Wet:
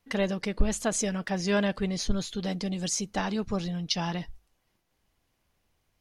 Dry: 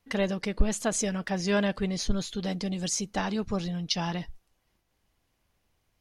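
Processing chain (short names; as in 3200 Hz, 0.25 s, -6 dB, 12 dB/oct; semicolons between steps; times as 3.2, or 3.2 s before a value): notches 50/100 Hz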